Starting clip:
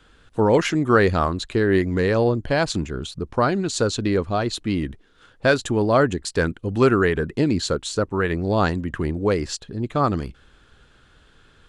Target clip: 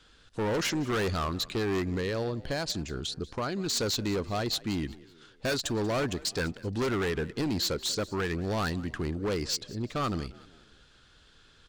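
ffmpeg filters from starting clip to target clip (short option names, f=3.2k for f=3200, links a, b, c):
-filter_complex "[0:a]equalizer=f=4.9k:t=o:w=1.4:g=10.5,asettb=1/sr,asplit=3[a][b][c];[a]atrim=end=1.934[d];[b]atrim=start=1.93:end=3.66,asetpts=PTS-STARTPTS,afade=t=in:d=0.004:c=qsin,afade=t=out:st=1.726:d=0.004:c=qsin,acompressor=threshold=-20dB:ratio=6[e];[c]atrim=start=3.656[f];[d][e]acrossfade=d=0.004:c1=hsin:c2=qsin[g];[g][f]acrossfade=d=0.004:c1=qsin:c2=hsin,asoftclip=type=hard:threshold=-19dB,asplit=2[h][i];[i]asplit=3[j][k][l];[j]adelay=187,afreqshift=37,volume=-20.5dB[m];[k]adelay=374,afreqshift=74,volume=-27.6dB[n];[l]adelay=561,afreqshift=111,volume=-34.8dB[o];[m][n][o]amix=inputs=3:normalize=0[p];[h][p]amix=inputs=2:normalize=0,volume=-7dB"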